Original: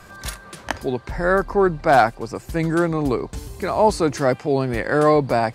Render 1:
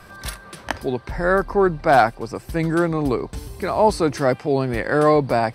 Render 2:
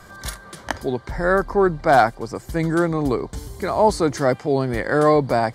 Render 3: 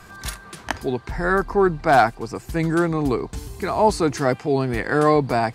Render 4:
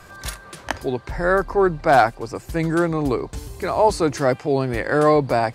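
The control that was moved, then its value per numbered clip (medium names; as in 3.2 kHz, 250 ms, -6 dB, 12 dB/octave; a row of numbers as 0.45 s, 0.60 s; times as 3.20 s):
band-stop, frequency: 6.9 kHz, 2.6 kHz, 560 Hz, 210 Hz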